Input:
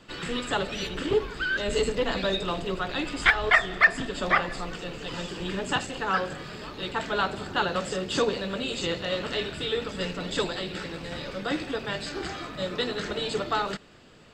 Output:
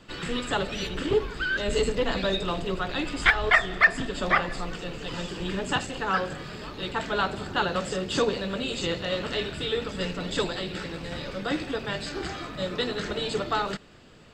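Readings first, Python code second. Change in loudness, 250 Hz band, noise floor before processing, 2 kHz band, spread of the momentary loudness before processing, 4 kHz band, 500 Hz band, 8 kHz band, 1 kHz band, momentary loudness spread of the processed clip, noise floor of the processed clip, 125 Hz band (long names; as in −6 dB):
0.0 dB, +1.0 dB, −41 dBFS, 0.0 dB, 12 LU, 0.0 dB, +0.5 dB, 0.0 dB, 0.0 dB, 12 LU, −40 dBFS, +2.0 dB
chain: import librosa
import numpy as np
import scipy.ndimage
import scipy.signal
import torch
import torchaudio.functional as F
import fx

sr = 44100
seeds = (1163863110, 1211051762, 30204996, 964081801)

y = fx.low_shelf(x, sr, hz=150.0, db=4.0)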